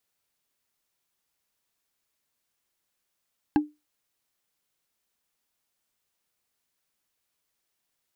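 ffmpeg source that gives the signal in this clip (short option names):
-f lavfi -i "aevalsrc='0.2*pow(10,-3*t/0.22)*sin(2*PI*299*t)+0.0944*pow(10,-3*t/0.065)*sin(2*PI*824.3*t)+0.0447*pow(10,-3*t/0.029)*sin(2*PI*1615.8*t)+0.0211*pow(10,-3*t/0.016)*sin(2*PI*2671*t)+0.01*pow(10,-3*t/0.01)*sin(2*PI*3988.7*t)':d=0.45:s=44100"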